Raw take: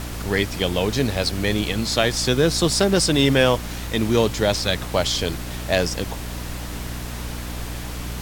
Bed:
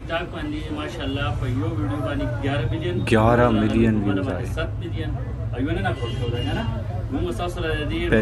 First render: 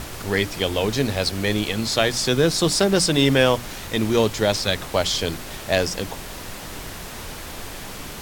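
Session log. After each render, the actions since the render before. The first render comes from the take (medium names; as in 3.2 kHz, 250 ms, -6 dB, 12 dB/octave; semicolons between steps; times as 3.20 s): hum notches 60/120/180/240/300 Hz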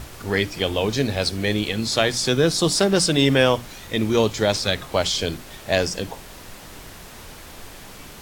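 noise print and reduce 6 dB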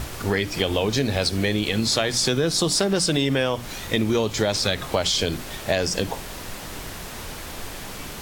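in parallel at -1 dB: peak limiter -13 dBFS, peak gain reduction 9.5 dB; on the sum: compression, threshold -18 dBFS, peak gain reduction 9 dB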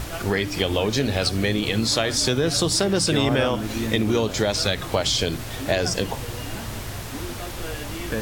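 add bed -9.5 dB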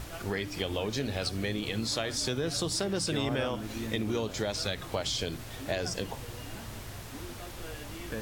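trim -10 dB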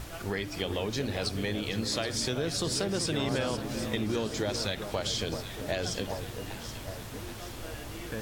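echo whose repeats swap between lows and highs 388 ms, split 1.5 kHz, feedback 72%, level -8 dB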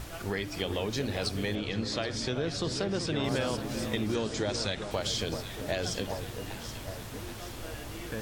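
1.55–3.24 s: distance through air 85 m; 4.14–4.91 s: steep low-pass 9.3 kHz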